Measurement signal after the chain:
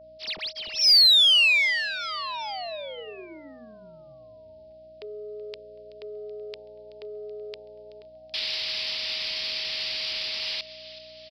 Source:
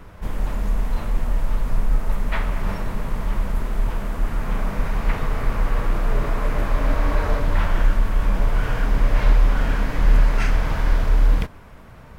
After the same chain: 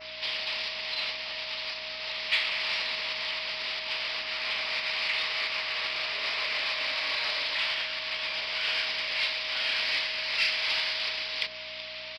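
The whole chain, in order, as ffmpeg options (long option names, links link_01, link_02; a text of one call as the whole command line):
ffmpeg -i in.wav -filter_complex "[0:a]bandreject=frequency=50:width_type=h:width=6,bandreject=frequency=100:width_type=h:width=6,bandreject=frequency=150:width_type=h:width=6,bandreject=frequency=200:width_type=h:width=6,bandreject=frequency=250:width_type=h:width=6,bandreject=frequency=300:width_type=h:width=6,bandreject=frequency=350:width_type=h:width=6,bandreject=frequency=400:width_type=h:width=6,bandreject=frequency=450:width_type=h:width=6,bandreject=frequency=500:width_type=h:width=6,acompressor=threshold=-20dB:ratio=6,aderivative,acrossover=split=140|3000[link_01][link_02][link_03];[link_02]acompressor=threshold=-45dB:ratio=6[link_04];[link_01][link_04][link_03]amix=inputs=3:normalize=0,asplit=2[link_05][link_06];[link_06]asplit=4[link_07][link_08][link_09][link_10];[link_07]adelay=378,afreqshift=110,volume=-21.5dB[link_11];[link_08]adelay=756,afreqshift=220,volume=-26.2dB[link_12];[link_09]adelay=1134,afreqshift=330,volume=-31dB[link_13];[link_10]adelay=1512,afreqshift=440,volume=-35.7dB[link_14];[link_11][link_12][link_13][link_14]amix=inputs=4:normalize=0[link_15];[link_05][link_15]amix=inputs=2:normalize=0,aeval=exprs='val(0)+0.000708*(sin(2*PI*60*n/s)+sin(2*PI*2*60*n/s)/2+sin(2*PI*3*60*n/s)/3+sin(2*PI*4*60*n/s)/4+sin(2*PI*5*60*n/s)/5)':channel_layout=same,asplit=2[link_16][link_17];[link_17]highpass=frequency=720:poles=1,volume=23dB,asoftclip=type=tanh:threshold=-21dB[link_18];[link_16][link_18]amix=inputs=2:normalize=0,lowpass=frequency=1700:poles=1,volume=-6dB,aresample=11025,aresample=44100,adynamicequalizer=threshold=0.00251:dfrequency=3400:dqfactor=1.5:tfrequency=3400:tqfactor=1.5:attack=5:release=100:ratio=0.375:range=1.5:mode=cutabove:tftype=bell,aexciter=amount=3.9:drive=9.9:freq=2200,aeval=exprs='val(0)+0.00501*sin(2*PI*630*n/s)':channel_layout=same" out.wav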